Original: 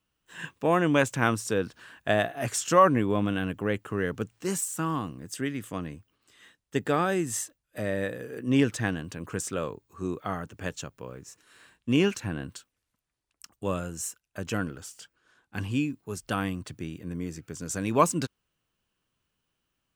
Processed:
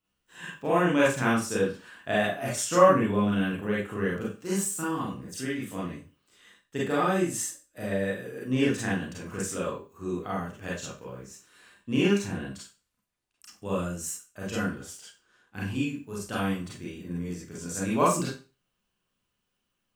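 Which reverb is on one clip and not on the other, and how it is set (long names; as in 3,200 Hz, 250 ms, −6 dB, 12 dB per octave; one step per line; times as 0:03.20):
four-comb reverb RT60 0.32 s, combs from 31 ms, DRR −6.5 dB
level −7 dB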